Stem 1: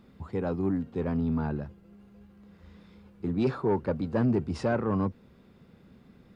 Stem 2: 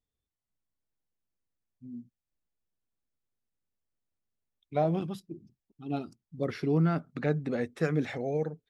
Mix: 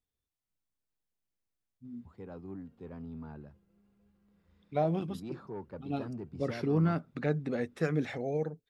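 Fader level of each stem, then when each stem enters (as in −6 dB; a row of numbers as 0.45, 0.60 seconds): −15.5, −2.0 decibels; 1.85, 0.00 seconds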